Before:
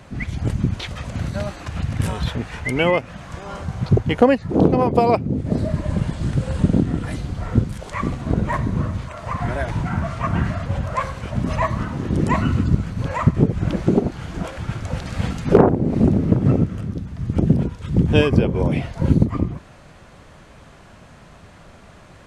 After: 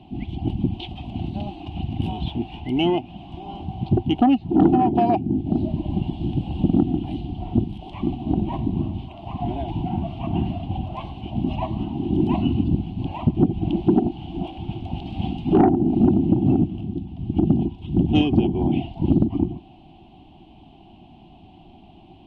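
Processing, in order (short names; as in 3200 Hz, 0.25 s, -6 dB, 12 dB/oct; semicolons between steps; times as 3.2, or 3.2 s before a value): EQ curve 140 Hz 0 dB, 350 Hz +11 dB, 510 Hz -21 dB, 760 Hz +11 dB, 1300 Hz -23 dB, 1800 Hz -25 dB, 2900 Hz +7 dB, 6700 Hz -27 dB, 11000 Hz -21 dB; soft clip -2 dBFS, distortion -18 dB; gain -4.5 dB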